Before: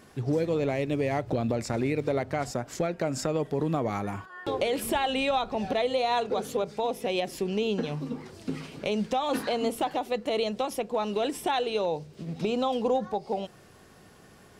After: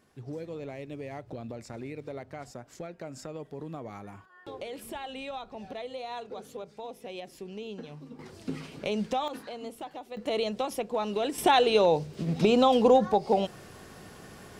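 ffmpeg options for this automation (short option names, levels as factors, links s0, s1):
-af "asetnsamples=n=441:p=0,asendcmd='8.19 volume volume -2dB;9.28 volume volume -12dB;10.17 volume volume -1.5dB;11.38 volume volume 6dB',volume=0.251"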